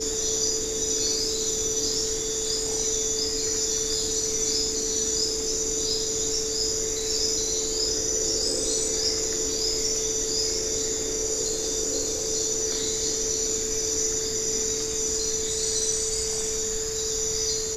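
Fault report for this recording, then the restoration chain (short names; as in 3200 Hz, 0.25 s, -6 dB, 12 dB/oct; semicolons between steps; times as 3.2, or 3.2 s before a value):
tone 440 Hz -31 dBFS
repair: notch 440 Hz, Q 30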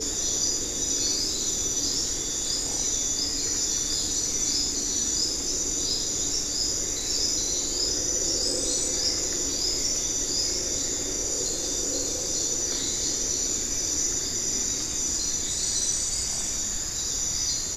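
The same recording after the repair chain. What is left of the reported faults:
none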